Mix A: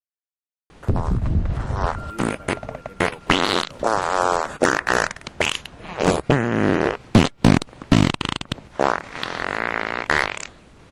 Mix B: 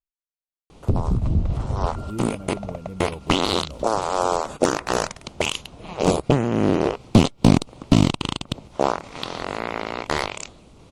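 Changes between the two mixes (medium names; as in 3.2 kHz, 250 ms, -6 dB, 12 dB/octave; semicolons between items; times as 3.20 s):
speech: remove high-pass 460 Hz 12 dB/octave; master: add peaking EQ 1.7 kHz -13.5 dB 0.66 oct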